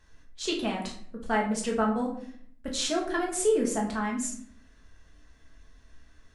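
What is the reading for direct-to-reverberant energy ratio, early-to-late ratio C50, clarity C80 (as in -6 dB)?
-2.0 dB, 6.5 dB, 10.0 dB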